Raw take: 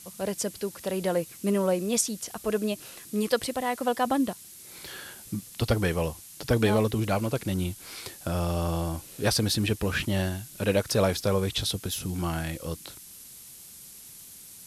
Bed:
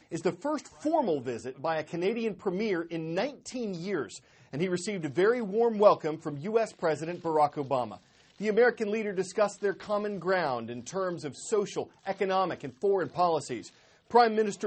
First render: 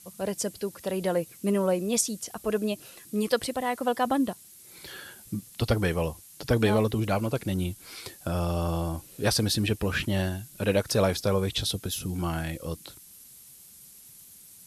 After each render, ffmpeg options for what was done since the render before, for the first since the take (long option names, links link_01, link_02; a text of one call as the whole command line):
ffmpeg -i in.wav -af "afftdn=noise_reduction=6:noise_floor=-47" out.wav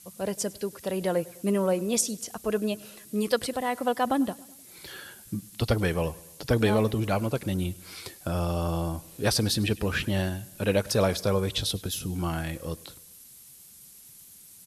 ffmpeg -i in.wav -af "aecho=1:1:101|202|303|404:0.0794|0.0445|0.0249|0.0139" out.wav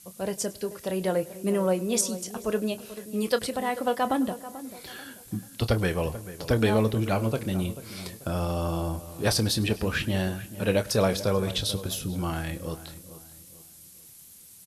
ffmpeg -i in.wav -filter_complex "[0:a]asplit=2[link_01][link_02];[link_02]adelay=27,volume=-12.5dB[link_03];[link_01][link_03]amix=inputs=2:normalize=0,asplit=2[link_04][link_05];[link_05]adelay=438,lowpass=frequency=1700:poles=1,volume=-14dB,asplit=2[link_06][link_07];[link_07]adelay=438,lowpass=frequency=1700:poles=1,volume=0.38,asplit=2[link_08][link_09];[link_09]adelay=438,lowpass=frequency=1700:poles=1,volume=0.38,asplit=2[link_10][link_11];[link_11]adelay=438,lowpass=frequency=1700:poles=1,volume=0.38[link_12];[link_04][link_06][link_08][link_10][link_12]amix=inputs=5:normalize=0" out.wav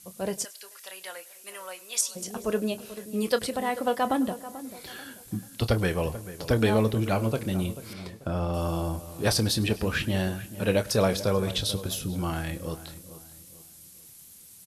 ffmpeg -i in.wav -filter_complex "[0:a]asplit=3[link_01][link_02][link_03];[link_01]afade=type=out:start_time=0.43:duration=0.02[link_04];[link_02]highpass=1500,afade=type=in:start_time=0.43:duration=0.02,afade=type=out:start_time=2.15:duration=0.02[link_05];[link_03]afade=type=in:start_time=2.15:duration=0.02[link_06];[link_04][link_05][link_06]amix=inputs=3:normalize=0,asettb=1/sr,asplit=3[link_07][link_08][link_09];[link_07]atrim=end=7.934[link_10];[link_08]atrim=start=7.93:end=8.54,asetpts=PTS-STARTPTS,afade=type=in:duration=0.004:curve=qsin,afade=type=out:start_time=0.606:duration=0.004:curve=qsin,lowpass=frequency=2200:poles=1[link_11];[link_09]atrim=start=8.536[link_12];[link_10][link_11]acrossfade=duration=0.004:curve1=hsin:curve2=qsin[link_13];[link_13][link_12]acrossfade=duration=0.004:curve1=qsin:curve2=hsin" out.wav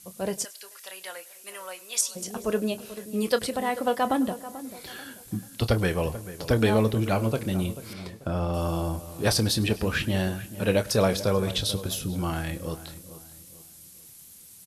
ffmpeg -i in.wav -af "volume=1dB" out.wav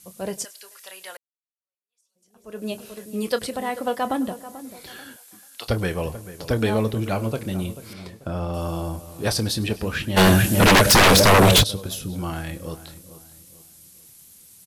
ffmpeg -i in.wav -filter_complex "[0:a]asettb=1/sr,asplit=3[link_01][link_02][link_03];[link_01]atrim=end=5.164[link_04];[link_02]atrim=start=5.16:end=5.68,asetpts=PTS-STARTPTS,afade=type=in:duration=0.004:curve=qsin,afade=type=out:start_time=0.516:duration=0.004:curve=qsin,highpass=820[link_05];[link_03]atrim=start=5.676[link_06];[link_04][link_05]acrossfade=duration=0.004:curve1=hsin:curve2=qsin[link_07];[link_07][link_06]acrossfade=duration=0.004:curve1=qsin:curve2=hsin,asplit=3[link_08][link_09][link_10];[link_08]afade=type=out:start_time=10.16:duration=0.02[link_11];[link_09]aeval=exprs='0.335*sin(PI/2*6.31*val(0)/0.335)':channel_layout=same,afade=type=in:start_time=10.16:duration=0.02,afade=type=out:start_time=11.62:duration=0.02[link_12];[link_10]afade=type=in:start_time=11.62:duration=0.02[link_13];[link_11][link_12][link_13]amix=inputs=3:normalize=0,asplit=2[link_14][link_15];[link_14]atrim=end=1.17,asetpts=PTS-STARTPTS,afade=type=out:start_time=1.166:duration=0.004:curve=hsin[link_16];[link_15]atrim=start=1.17,asetpts=PTS-STARTPTS,afade=type=in:duration=1.53:curve=exp[link_17];[link_16][link_17]concat=n=2:v=0:a=1" out.wav